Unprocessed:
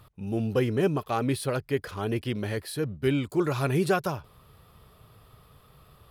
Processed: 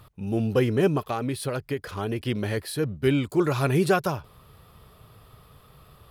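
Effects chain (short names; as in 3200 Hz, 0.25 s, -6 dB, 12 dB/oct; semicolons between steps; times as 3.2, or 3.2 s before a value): 1.05–2.2 compressor, threshold -28 dBFS, peak gain reduction 7.5 dB; gain +3 dB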